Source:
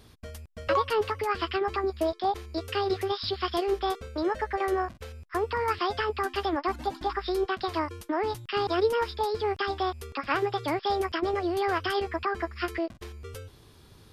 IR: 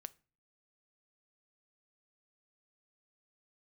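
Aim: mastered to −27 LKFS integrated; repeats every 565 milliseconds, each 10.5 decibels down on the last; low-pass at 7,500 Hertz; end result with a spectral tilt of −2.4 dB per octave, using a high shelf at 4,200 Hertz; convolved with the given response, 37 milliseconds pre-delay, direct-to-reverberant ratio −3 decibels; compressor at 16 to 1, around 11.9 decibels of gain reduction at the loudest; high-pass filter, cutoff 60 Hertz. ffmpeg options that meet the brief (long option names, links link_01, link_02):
-filter_complex "[0:a]highpass=60,lowpass=7500,highshelf=frequency=4200:gain=7.5,acompressor=threshold=-31dB:ratio=16,aecho=1:1:565|1130|1695:0.299|0.0896|0.0269,asplit=2[link_01][link_02];[1:a]atrim=start_sample=2205,adelay=37[link_03];[link_02][link_03]afir=irnorm=-1:irlink=0,volume=8.5dB[link_04];[link_01][link_04]amix=inputs=2:normalize=0,volume=4dB"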